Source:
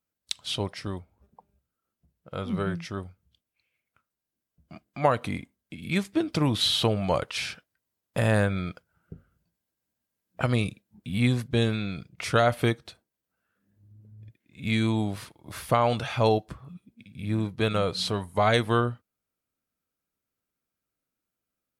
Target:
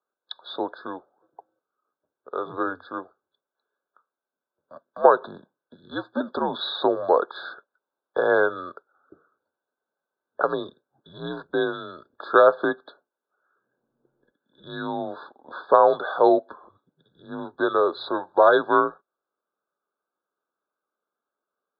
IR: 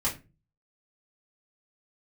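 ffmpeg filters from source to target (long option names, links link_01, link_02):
-af "highpass=frequency=450:width_type=q:width=0.5412,highpass=frequency=450:width_type=q:width=1.307,lowpass=frequency=3100:width_type=q:width=0.5176,lowpass=frequency=3100:width_type=q:width=0.7071,lowpass=frequency=3100:width_type=q:width=1.932,afreqshift=-78,afftfilt=real='re*eq(mod(floor(b*sr/1024/1700),2),0)':imag='im*eq(mod(floor(b*sr/1024/1700),2),0)':win_size=1024:overlap=0.75,volume=8dB"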